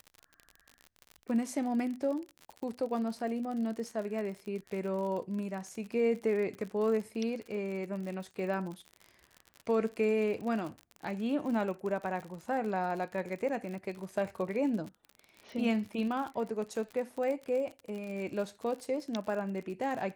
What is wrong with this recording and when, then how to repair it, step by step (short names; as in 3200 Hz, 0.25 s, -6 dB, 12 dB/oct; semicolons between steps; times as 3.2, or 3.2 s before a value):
crackle 55/s -38 dBFS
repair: de-click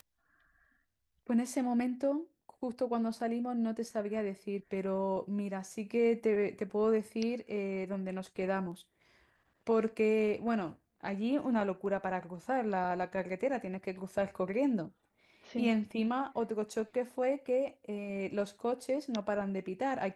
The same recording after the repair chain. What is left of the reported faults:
none